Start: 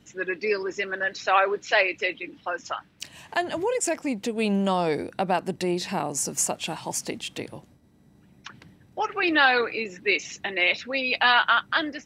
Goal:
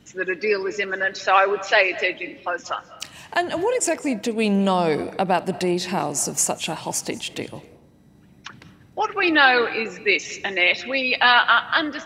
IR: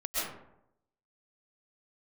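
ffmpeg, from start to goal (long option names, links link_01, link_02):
-filter_complex "[0:a]asplit=2[link_01][link_02];[1:a]atrim=start_sample=2205,adelay=66[link_03];[link_02][link_03]afir=irnorm=-1:irlink=0,volume=-23.5dB[link_04];[link_01][link_04]amix=inputs=2:normalize=0,volume=4dB"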